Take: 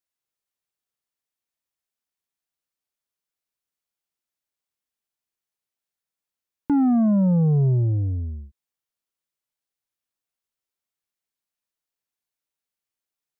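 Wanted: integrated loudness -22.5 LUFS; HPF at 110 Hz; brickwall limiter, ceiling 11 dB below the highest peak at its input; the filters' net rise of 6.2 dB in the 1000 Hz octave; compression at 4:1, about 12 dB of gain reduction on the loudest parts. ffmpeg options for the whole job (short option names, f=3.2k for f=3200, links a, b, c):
-af "highpass=110,equalizer=f=1k:t=o:g=9,acompressor=threshold=-30dB:ratio=4,volume=12dB,alimiter=limit=-15dB:level=0:latency=1"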